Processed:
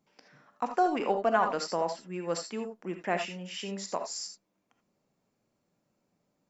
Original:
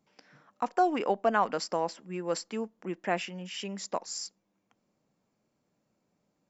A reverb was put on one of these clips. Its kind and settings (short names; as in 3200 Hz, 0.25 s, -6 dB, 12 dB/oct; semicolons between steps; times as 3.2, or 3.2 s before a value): non-linear reverb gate 0.1 s rising, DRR 5.5 dB; gain -1 dB